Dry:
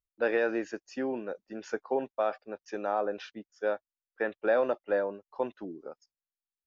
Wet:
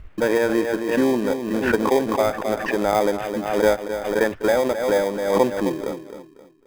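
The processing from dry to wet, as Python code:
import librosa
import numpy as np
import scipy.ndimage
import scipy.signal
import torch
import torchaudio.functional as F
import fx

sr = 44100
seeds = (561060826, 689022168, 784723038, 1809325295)

p1 = fx.low_shelf(x, sr, hz=180.0, db=9.0)
p2 = p1 + fx.echo_feedback(p1, sr, ms=264, feedback_pct=33, wet_db=-10.5, dry=0)
p3 = fx.rider(p2, sr, range_db=4, speed_s=0.5)
p4 = scipy.signal.sosfilt(scipy.signal.butter(4, 2400.0, 'lowpass', fs=sr, output='sos'), p3)
p5 = fx.sample_hold(p4, sr, seeds[0], rate_hz=1400.0, jitter_pct=0)
p6 = p4 + F.gain(torch.from_numpy(p5), -7.0).numpy()
p7 = fx.pre_swell(p6, sr, db_per_s=58.0)
y = F.gain(torch.from_numpy(p7), 7.0).numpy()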